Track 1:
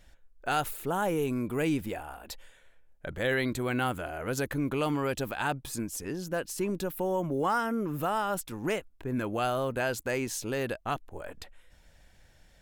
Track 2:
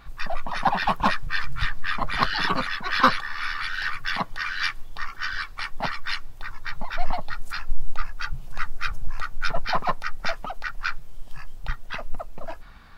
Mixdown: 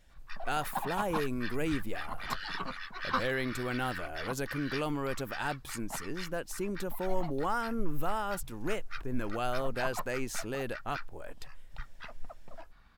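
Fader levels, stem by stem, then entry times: -4.5 dB, -13.5 dB; 0.00 s, 0.10 s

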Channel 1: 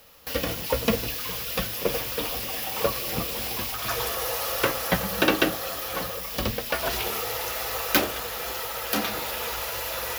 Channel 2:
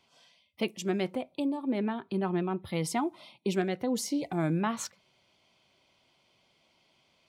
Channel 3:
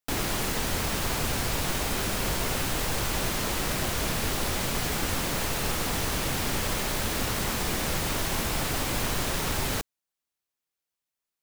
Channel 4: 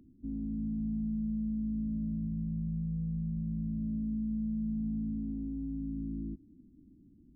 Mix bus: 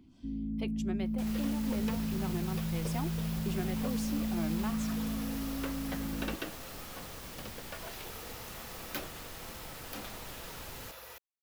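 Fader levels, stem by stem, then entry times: -18.0 dB, -9.5 dB, -18.0 dB, 0.0 dB; 1.00 s, 0.00 s, 1.10 s, 0.00 s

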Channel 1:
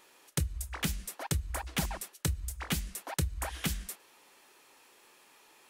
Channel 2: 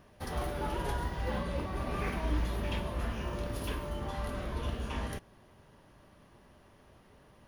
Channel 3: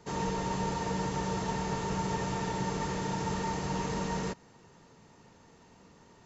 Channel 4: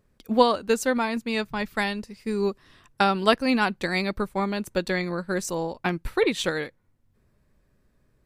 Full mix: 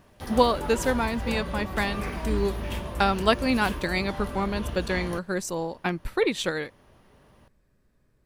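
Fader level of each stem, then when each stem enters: -11.0 dB, +2.0 dB, mute, -1.5 dB; 0.00 s, 0.00 s, mute, 0.00 s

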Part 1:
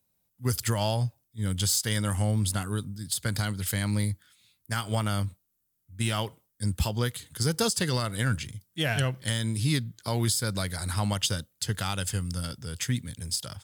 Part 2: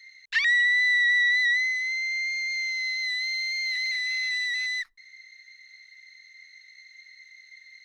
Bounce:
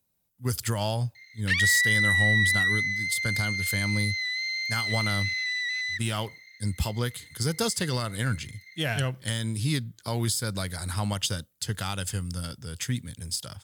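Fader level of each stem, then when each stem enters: -1.0 dB, -1.5 dB; 0.00 s, 1.15 s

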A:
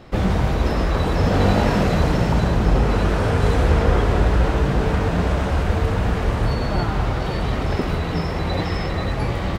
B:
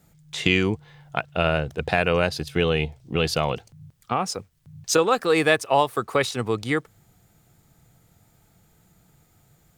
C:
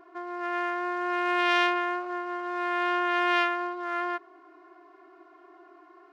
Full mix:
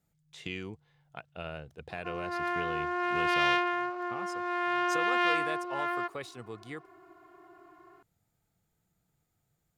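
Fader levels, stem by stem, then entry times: mute, -18.5 dB, -2.5 dB; mute, 0.00 s, 1.90 s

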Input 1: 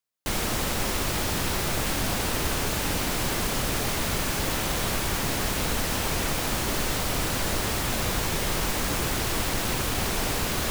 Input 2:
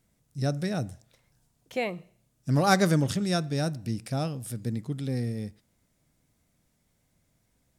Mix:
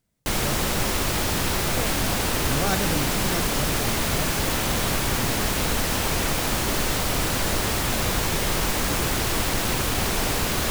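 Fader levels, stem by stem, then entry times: +3.0 dB, -5.5 dB; 0.00 s, 0.00 s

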